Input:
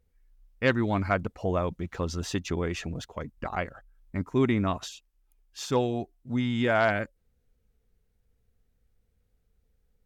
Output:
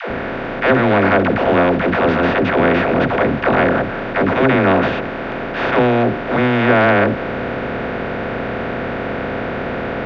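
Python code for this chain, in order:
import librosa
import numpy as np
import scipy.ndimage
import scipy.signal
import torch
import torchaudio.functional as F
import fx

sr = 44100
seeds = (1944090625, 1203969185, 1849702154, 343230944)

y = fx.bin_compress(x, sr, power=0.2)
y = scipy.signal.sosfilt(scipy.signal.butter(4, 3100.0, 'lowpass', fs=sr, output='sos'), y)
y = fx.peak_eq(y, sr, hz=89.0, db=-7.0, octaves=0.22)
y = fx.dispersion(y, sr, late='lows', ms=107.0, hz=350.0)
y = y * librosa.db_to_amplitude(5.5)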